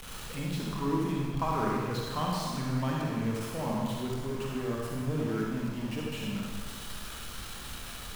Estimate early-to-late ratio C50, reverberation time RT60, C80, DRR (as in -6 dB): -2.0 dB, 1.6 s, 0.0 dB, -3.5 dB